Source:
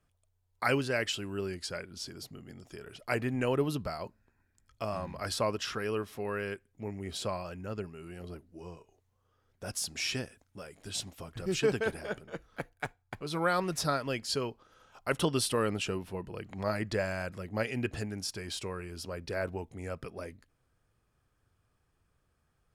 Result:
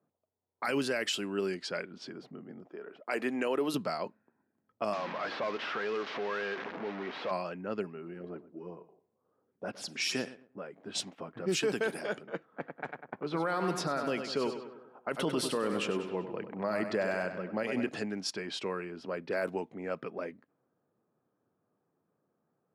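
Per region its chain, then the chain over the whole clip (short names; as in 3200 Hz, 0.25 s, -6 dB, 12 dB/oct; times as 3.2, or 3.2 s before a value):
2.66–3.74 HPF 280 Hz + high shelf 9900 Hz -7 dB
4.93–7.31 delta modulation 32 kbps, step -40.5 dBFS + compressor 2:1, threshold -45 dBFS + overdrive pedal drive 20 dB, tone 2600 Hz, clips at -29.5 dBFS
7.83–10.66 LFO notch sine 2.2 Hz 660–7800 Hz + feedback echo 0.115 s, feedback 26%, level -16.5 dB
12.45–17.89 high shelf 3300 Hz -10.5 dB + feedback echo 98 ms, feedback 54%, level -10 dB
whole clip: HPF 180 Hz 24 dB/oct; low-pass opened by the level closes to 750 Hz, open at -30 dBFS; limiter -25.5 dBFS; gain +4 dB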